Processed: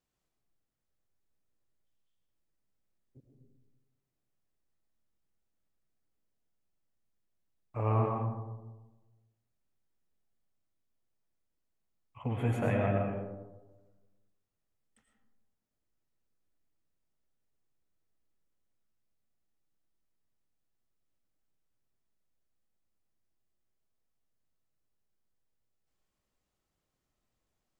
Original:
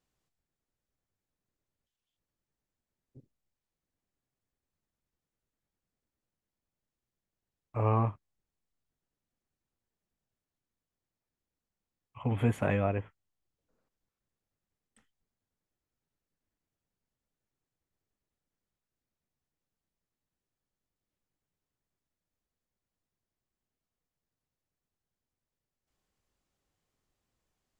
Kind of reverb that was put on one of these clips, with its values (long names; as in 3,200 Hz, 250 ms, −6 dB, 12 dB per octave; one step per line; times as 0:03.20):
comb and all-pass reverb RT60 1.2 s, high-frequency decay 0.3×, pre-delay 65 ms, DRR 1 dB
level −3.5 dB